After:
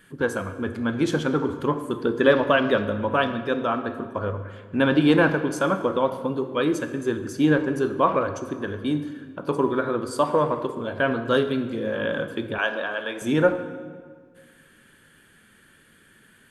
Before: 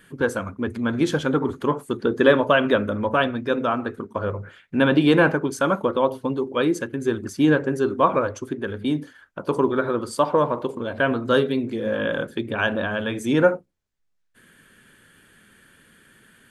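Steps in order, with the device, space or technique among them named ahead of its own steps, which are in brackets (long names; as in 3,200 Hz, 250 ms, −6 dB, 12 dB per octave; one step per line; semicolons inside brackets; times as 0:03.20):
saturated reverb return (on a send at −8 dB: convolution reverb RT60 1.7 s, pre-delay 15 ms + soft clipping −13 dBFS, distortion −15 dB)
0:12.58–0:13.22: on the sum: high-pass filter 410 Hz 12 dB per octave
level −2 dB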